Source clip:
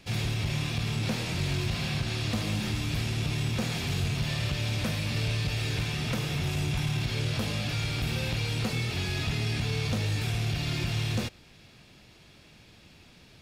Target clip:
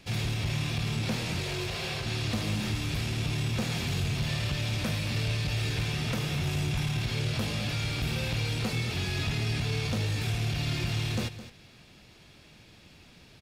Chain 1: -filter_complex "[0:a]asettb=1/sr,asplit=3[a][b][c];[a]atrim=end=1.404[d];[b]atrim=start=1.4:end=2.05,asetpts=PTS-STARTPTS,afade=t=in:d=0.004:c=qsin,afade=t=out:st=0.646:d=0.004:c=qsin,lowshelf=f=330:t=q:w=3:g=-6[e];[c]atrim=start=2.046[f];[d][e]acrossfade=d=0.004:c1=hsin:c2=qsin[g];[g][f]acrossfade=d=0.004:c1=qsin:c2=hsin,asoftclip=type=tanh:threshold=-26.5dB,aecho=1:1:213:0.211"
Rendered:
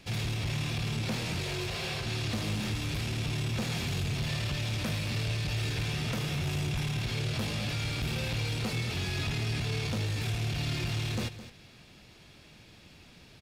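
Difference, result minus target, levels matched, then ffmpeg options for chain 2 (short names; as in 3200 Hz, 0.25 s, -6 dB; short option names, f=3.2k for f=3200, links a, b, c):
soft clip: distortion +11 dB
-filter_complex "[0:a]asettb=1/sr,asplit=3[a][b][c];[a]atrim=end=1.404[d];[b]atrim=start=1.4:end=2.05,asetpts=PTS-STARTPTS,afade=t=in:d=0.004:c=qsin,afade=t=out:st=0.646:d=0.004:c=qsin,lowshelf=f=330:t=q:w=3:g=-6[e];[c]atrim=start=2.046[f];[d][e]acrossfade=d=0.004:c1=hsin:c2=qsin[g];[g][f]acrossfade=d=0.004:c1=qsin:c2=hsin,asoftclip=type=tanh:threshold=-19dB,aecho=1:1:213:0.211"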